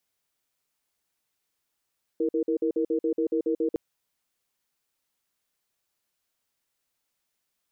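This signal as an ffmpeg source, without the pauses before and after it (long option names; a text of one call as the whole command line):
ffmpeg -f lavfi -i "aevalsrc='0.0562*(sin(2*PI*326*t)+sin(2*PI*467*t))*clip(min(mod(t,0.14),0.09-mod(t,0.14))/0.005,0,1)':duration=1.56:sample_rate=44100" out.wav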